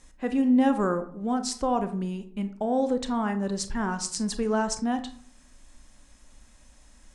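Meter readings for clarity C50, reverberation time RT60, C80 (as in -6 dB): 12.5 dB, 0.50 s, 16.0 dB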